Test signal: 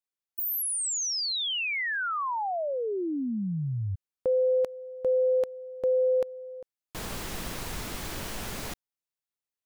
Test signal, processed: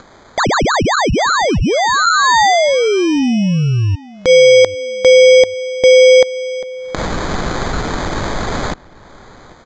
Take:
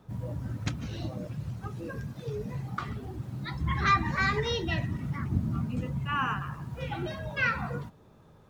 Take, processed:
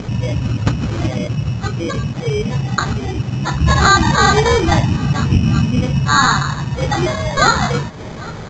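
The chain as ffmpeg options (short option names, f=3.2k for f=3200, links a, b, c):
-filter_complex "[0:a]adynamicequalizer=threshold=0.01:dfrequency=860:dqfactor=1.6:tfrequency=860:tqfactor=1.6:attack=5:release=100:ratio=0.375:range=2:mode=boostabove:tftype=bell,acompressor=mode=upward:threshold=-36dB:ratio=2.5:attack=22:release=192:knee=2.83:detection=peak,acrusher=samples=16:mix=1:aa=0.000001,asplit=2[a][b];[b]adelay=795,lowpass=f=4k:p=1,volume=-22dB,asplit=2[c][d];[d]adelay=795,lowpass=f=4k:p=1,volume=0.28[e];[a][c][e]amix=inputs=3:normalize=0,aresample=16000,aresample=44100,alimiter=level_in=17.5dB:limit=-1dB:release=50:level=0:latency=1,volume=-1dB"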